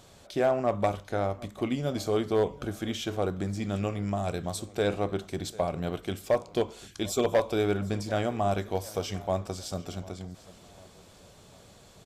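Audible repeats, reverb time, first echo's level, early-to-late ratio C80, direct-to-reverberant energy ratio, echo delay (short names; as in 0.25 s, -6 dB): 3, none, -21.0 dB, none, none, 0.746 s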